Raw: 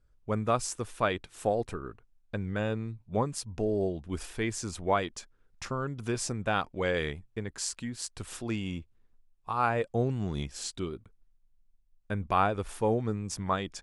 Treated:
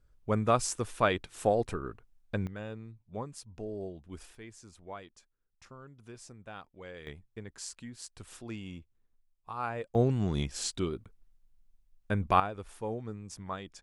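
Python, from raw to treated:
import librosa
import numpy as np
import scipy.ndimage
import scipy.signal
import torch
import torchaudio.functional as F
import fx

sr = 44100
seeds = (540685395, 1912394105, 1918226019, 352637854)

y = fx.gain(x, sr, db=fx.steps((0.0, 1.5), (2.47, -10.0), (4.35, -17.0), (7.07, -8.0), (9.95, 2.5), (12.4, -9.0)))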